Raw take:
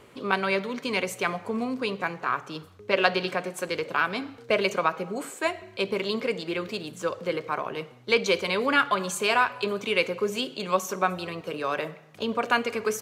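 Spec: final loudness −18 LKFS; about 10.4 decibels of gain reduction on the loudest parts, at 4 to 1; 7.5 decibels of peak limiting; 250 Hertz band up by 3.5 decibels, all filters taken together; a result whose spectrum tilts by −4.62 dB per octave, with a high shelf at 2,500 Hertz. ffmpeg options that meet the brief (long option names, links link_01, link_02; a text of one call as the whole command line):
ffmpeg -i in.wav -af "equalizer=frequency=250:width_type=o:gain=4.5,highshelf=frequency=2500:gain=-4,acompressor=threshold=-30dB:ratio=4,volume=17.5dB,alimiter=limit=-6.5dB:level=0:latency=1" out.wav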